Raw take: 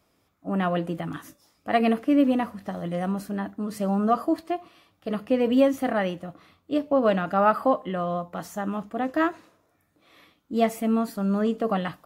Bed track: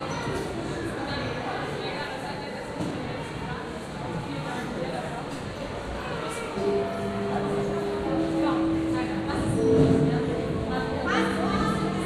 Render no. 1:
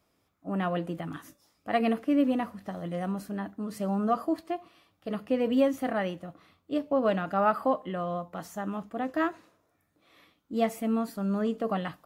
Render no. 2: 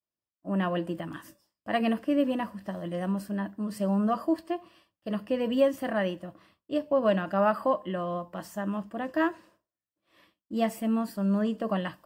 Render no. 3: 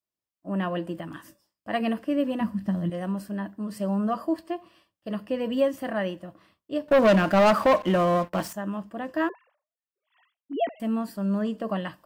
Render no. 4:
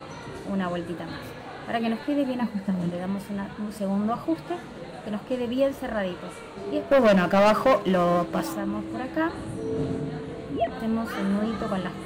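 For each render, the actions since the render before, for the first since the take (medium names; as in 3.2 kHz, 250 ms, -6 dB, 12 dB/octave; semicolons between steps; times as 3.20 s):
trim -4.5 dB
expander -56 dBFS; rippled EQ curve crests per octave 1.3, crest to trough 7 dB
2.41–2.90 s: resonant low shelf 320 Hz +9 dB, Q 1.5; 6.88–8.53 s: waveshaping leveller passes 3; 9.29–10.80 s: formants replaced by sine waves
add bed track -8.5 dB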